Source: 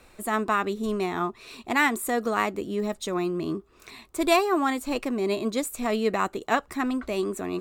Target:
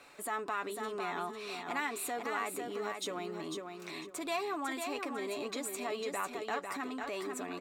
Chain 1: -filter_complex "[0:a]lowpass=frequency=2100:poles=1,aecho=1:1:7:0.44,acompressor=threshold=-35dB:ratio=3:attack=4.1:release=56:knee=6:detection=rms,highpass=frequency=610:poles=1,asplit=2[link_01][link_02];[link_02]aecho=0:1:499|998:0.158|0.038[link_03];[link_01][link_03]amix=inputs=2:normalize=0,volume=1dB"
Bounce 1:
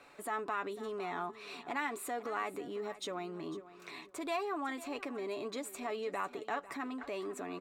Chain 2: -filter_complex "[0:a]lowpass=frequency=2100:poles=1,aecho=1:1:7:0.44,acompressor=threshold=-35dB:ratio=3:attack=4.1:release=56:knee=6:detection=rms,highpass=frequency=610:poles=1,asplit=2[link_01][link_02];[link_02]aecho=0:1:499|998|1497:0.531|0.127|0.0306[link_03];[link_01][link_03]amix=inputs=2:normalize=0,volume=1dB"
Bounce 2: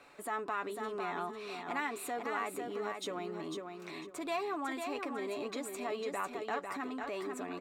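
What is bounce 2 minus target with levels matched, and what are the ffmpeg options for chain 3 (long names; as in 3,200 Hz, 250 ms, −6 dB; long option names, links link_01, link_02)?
4,000 Hz band −3.0 dB
-filter_complex "[0:a]lowpass=frequency=5400:poles=1,aecho=1:1:7:0.44,acompressor=threshold=-35dB:ratio=3:attack=4.1:release=56:knee=6:detection=rms,highpass=frequency=610:poles=1,asplit=2[link_01][link_02];[link_02]aecho=0:1:499|998|1497:0.531|0.127|0.0306[link_03];[link_01][link_03]amix=inputs=2:normalize=0,volume=1dB"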